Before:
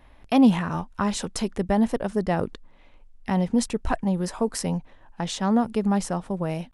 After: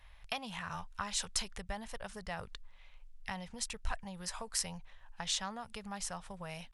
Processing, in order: treble shelf 9.8 kHz -6 dB; compression 2.5:1, threshold -27 dBFS, peak gain reduction 10 dB; amplifier tone stack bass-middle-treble 10-0-10; trim +2 dB

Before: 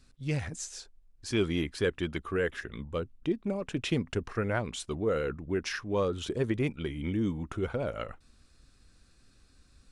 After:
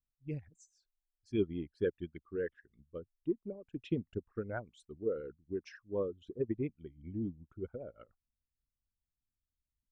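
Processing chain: resonances exaggerated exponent 2; upward expansion 2.5:1, over -43 dBFS; trim -2 dB

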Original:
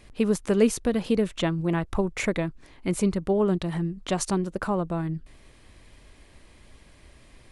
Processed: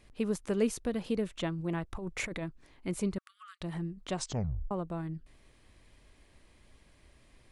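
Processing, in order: 1.94–2.44 s: compressor with a negative ratio -28 dBFS, ratio -1; 3.18–3.61 s: brick-wall FIR high-pass 1.1 kHz; 4.16 s: tape stop 0.55 s; trim -8.5 dB

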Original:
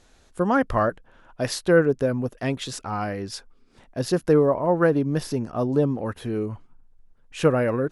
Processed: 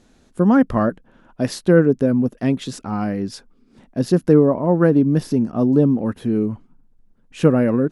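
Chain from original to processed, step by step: peaking EQ 220 Hz +13 dB 1.5 oct; trim -1.5 dB

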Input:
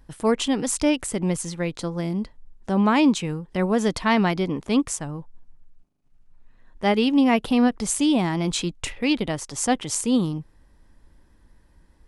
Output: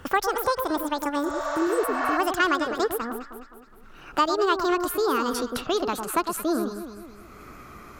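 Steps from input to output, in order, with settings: gliding tape speed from 177% -> 125%; peaking EQ 1.3 kHz +12.5 dB 0.67 oct; echo whose repeats swap between lows and highs 104 ms, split 1.3 kHz, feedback 51%, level -6.5 dB; spectral replace 1.28–2.14 s, 500–7700 Hz both; three bands compressed up and down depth 70%; trim -5.5 dB

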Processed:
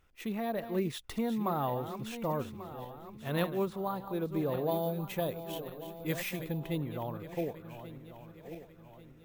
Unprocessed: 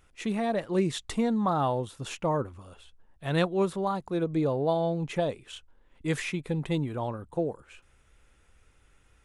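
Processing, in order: backward echo that repeats 570 ms, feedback 64%, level -10.5 dB; careless resampling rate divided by 3×, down filtered, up hold; 4.71–6.60 s: treble shelf 4.6 kHz +7.5 dB; trim -6 dB

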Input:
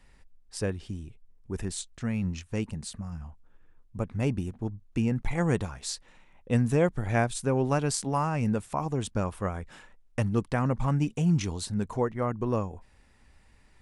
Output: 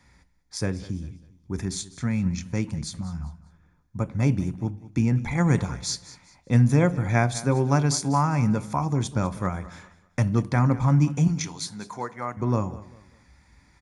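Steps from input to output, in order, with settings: 11.27–12.37 s: high-pass 880 Hz 6 dB/octave; feedback delay 198 ms, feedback 32%, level -17.5 dB; reverberation RT60 0.55 s, pre-delay 3 ms, DRR 12 dB

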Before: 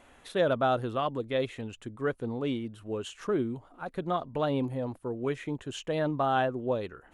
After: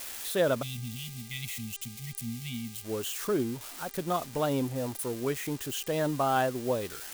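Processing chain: zero-crossing glitches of -29 dBFS; spectral selection erased 0.62–2.84 s, 240–1900 Hz; mains buzz 400 Hz, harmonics 24, -57 dBFS -1 dB/octave

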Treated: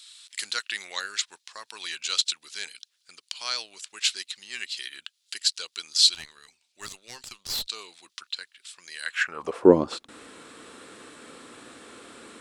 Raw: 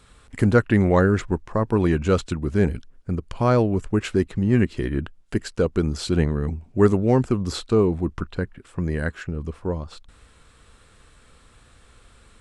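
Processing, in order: high-pass sweep 4 kHz -> 290 Hz, 9.01–9.70 s; 6.14–7.67 s: valve stage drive 36 dB, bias 0.7; trim +8.5 dB

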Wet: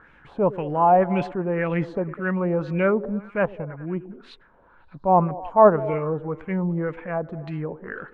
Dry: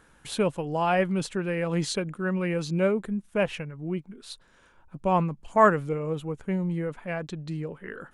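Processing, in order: transient shaper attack -6 dB, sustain -2 dB; LFO low-pass sine 1.9 Hz 760–2400 Hz; repeats whose band climbs or falls 101 ms, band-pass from 320 Hz, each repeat 0.7 oct, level -12 dB; trim +3.5 dB

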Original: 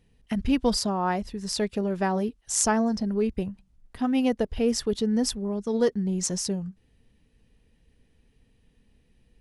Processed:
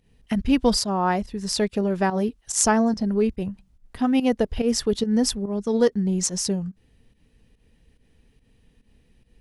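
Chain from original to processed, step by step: volume shaper 143 bpm, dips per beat 1, -12 dB, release 131 ms; trim +4 dB

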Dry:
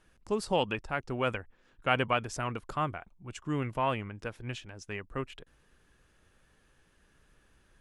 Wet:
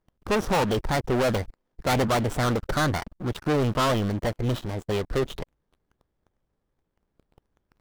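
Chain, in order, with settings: median filter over 25 samples; waveshaping leveller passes 5; formant shift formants +4 st

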